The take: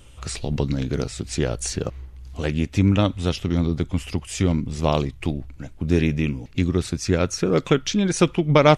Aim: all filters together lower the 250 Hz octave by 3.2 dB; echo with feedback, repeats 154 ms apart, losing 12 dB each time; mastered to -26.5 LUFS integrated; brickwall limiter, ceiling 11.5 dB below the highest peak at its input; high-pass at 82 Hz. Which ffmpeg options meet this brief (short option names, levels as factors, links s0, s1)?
-af "highpass=82,equalizer=f=250:t=o:g=-4.5,alimiter=limit=0.224:level=0:latency=1,aecho=1:1:154|308|462:0.251|0.0628|0.0157,volume=1.06"